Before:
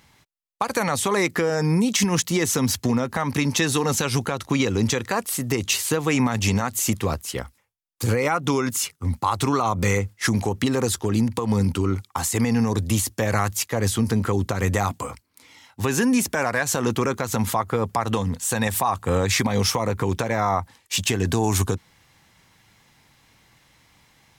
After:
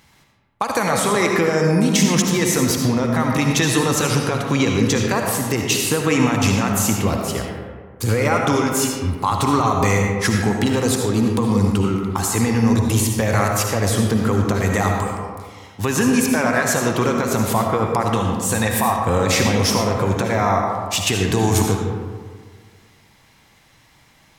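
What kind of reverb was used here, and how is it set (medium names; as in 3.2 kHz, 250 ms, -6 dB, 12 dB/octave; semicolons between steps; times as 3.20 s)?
algorithmic reverb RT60 1.7 s, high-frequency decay 0.45×, pre-delay 35 ms, DRR 1 dB; trim +2 dB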